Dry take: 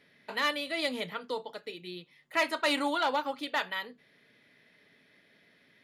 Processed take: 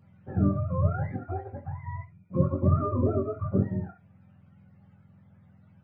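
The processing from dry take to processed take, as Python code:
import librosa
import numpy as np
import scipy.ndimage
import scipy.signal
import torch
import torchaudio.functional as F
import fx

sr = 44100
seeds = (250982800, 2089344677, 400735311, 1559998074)

y = fx.octave_mirror(x, sr, pivot_hz=590.0)
y = fx.room_early_taps(y, sr, ms=(21, 67), db=(-6.5, -13.0))
y = y * 10.0 ** (1.5 / 20.0)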